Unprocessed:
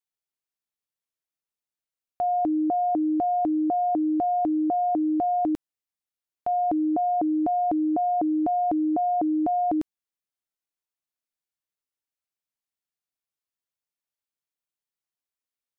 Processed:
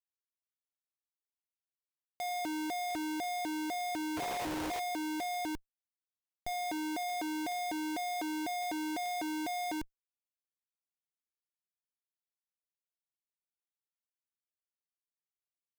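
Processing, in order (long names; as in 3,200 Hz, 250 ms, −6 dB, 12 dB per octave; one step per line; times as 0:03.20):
low-shelf EQ 230 Hz −11 dB
leveller curve on the samples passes 5
flanger 1.3 Hz, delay 1 ms, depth 1.4 ms, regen +53%
sound drawn into the spectrogram noise, 0:04.16–0:04.80, 340–1,100 Hz −30 dBFS
comparator with hysteresis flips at −34 dBFS
level −5.5 dB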